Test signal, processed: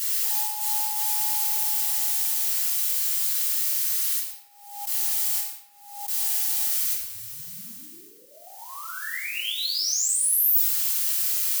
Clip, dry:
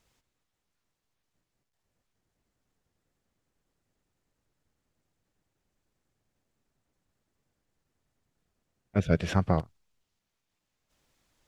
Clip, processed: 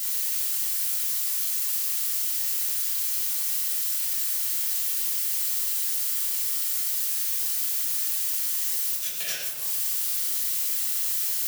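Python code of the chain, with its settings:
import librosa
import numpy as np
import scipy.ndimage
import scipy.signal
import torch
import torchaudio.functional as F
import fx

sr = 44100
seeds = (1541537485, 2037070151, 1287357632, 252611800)

p1 = fx.fade_in_head(x, sr, length_s=1.88)
p2 = fx.dynamic_eq(p1, sr, hz=520.0, q=1.2, threshold_db=-42.0, ratio=4.0, max_db=6)
p3 = fx.quant_dither(p2, sr, seeds[0], bits=6, dither='triangular')
p4 = p2 + F.gain(torch.from_numpy(p3), -6.5).numpy()
p5 = fx.over_compress(p4, sr, threshold_db=-31.0, ratio=-0.5)
p6 = np.diff(p5, prepend=0.0)
p7 = p6 + fx.echo_single(p6, sr, ms=116, db=-11.0, dry=0)
p8 = fx.room_shoebox(p7, sr, seeds[1], volume_m3=230.0, walls='mixed', distance_m=3.2)
y = fx.pre_swell(p8, sr, db_per_s=75.0)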